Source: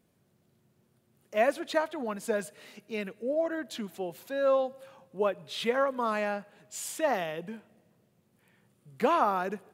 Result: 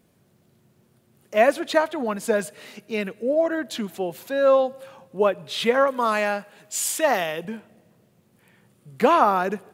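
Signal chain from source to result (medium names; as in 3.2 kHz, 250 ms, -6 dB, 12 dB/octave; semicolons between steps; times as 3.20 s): 5.87–7.45 s: tilt EQ +1.5 dB/octave; trim +8 dB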